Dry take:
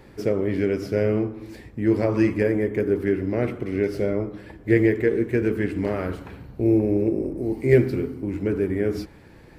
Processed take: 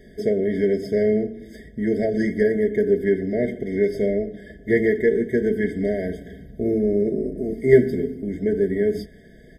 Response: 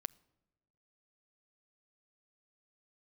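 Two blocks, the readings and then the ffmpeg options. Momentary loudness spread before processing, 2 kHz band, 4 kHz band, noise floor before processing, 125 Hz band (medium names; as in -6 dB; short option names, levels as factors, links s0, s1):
11 LU, +1.0 dB, no reading, -47 dBFS, -4.5 dB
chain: -af "aecho=1:1:4.7:0.72,afftfilt=real='re*eq(mod(floor(b*sr/1024/760),2),0)':imag='im*eq(mod(floor(b*sr/1024/760),2),0)':win_size=1024:overlap=0.75"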